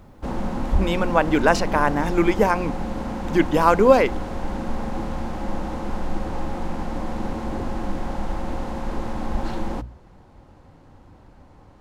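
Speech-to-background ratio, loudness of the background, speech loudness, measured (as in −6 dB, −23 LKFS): 10.0 dB, −30.0 LKFS, −20.0 LKFS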